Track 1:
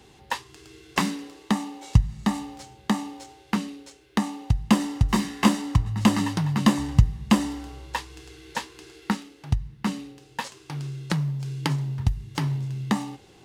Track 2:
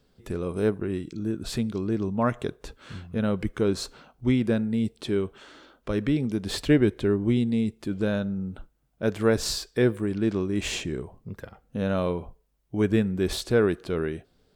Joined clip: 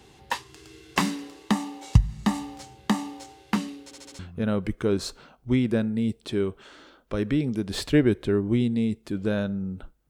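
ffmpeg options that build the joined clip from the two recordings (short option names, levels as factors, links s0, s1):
-filter_complex "[0:a]apad=whole_dur=10.09,atrim=end=10.09,asplit=5[s0][s1][s2][s3][s4];[s0]atrim=end=3.912[s5];[s1]atrim=start=3.838:end=3.912[s6];[s2]atrim=start=3.838:end=3.912[s7];[s3]atrim=start=3.838:end=3.912[s8];[s4]atrim=start=3.838:end=3.912[s9];[1:a]atrim=start=2.948:end=8.85[s10];[s5][s6]acrossfade=d=0.004:c1=hsin:c2=hsin[s11];[s11][s7]acrossfade=d=0.004:c1=hsin:c2=hsin[s12];[s12][s8]acrossfade=d=0.004:c1=hsin:c2=hsin[s13];[s13][s9]acrossfade=d=0.004:c1=hsin:c2=hsin[s14];[s14][s10]acrossfade=d=0.004:c1=hsin:c2=hsin"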